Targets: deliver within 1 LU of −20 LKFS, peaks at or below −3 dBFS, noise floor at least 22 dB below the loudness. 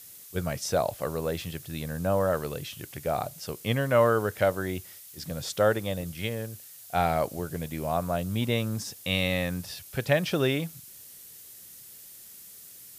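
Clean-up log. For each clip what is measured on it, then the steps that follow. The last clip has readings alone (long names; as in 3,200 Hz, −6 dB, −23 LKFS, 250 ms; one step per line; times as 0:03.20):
background noise floor −48 dBFS; target noise floor −51 dBFS; integrated loudness −29.0 LKFS; sample peak −10.0 dBFS; target loudness −20.0 LKFS
→ noise reduction from a noise print 6 dB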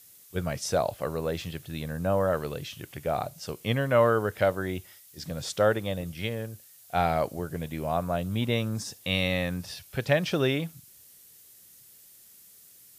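background noise floor −54 dBFS; integrated loudness −29.0 LKFS; sample peak −10.0 dBFS; target loudness −20.0 LKFS
→ level +9 dB
brickwall limiter −3 dBFS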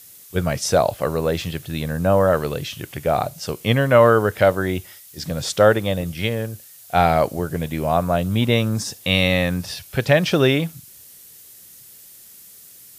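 integrated loudness −20.0 LKFS; sample peak −3.0 dBFS; background noise floor −45 dBFS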